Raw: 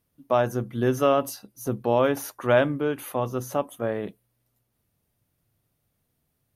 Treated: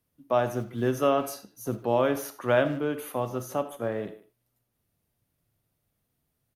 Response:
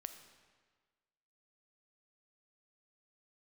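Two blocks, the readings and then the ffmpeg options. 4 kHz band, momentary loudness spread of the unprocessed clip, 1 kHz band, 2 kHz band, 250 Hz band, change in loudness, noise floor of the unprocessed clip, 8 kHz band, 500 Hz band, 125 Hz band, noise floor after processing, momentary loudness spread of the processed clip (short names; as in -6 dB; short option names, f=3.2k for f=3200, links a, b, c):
-2.5 dB, 11 LU, -2.5 dB, -2.5 dB, -2.5 dB, -3.0 dB, -75 dBFS, -3.0 dB, -3.0 dB, -3.5 dB, -79 dBFS, 11 LU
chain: -filter_complex "[0:a]acrossover=split=140|1100|2500[a][b][c][d];[a]acrusher=bits=5:mode=log:mix=0:aa=0.000001[e];[e][b][c][d]amix=inputs=4:normalize=0,asplit=2[f][g];[g]adelay=150,highpass=300,lowpass=3.4k,asoftclip=type=hard:threshold=-17dB,volume=-17dB[h];[f][h]amix=inputs=2:normalize=0[i];[1:a]atrim=start_sample=2205,atrim=end_sample=4410[j];[i][j]afir=irnorm=-1:irlink=0,volume=1.5dB"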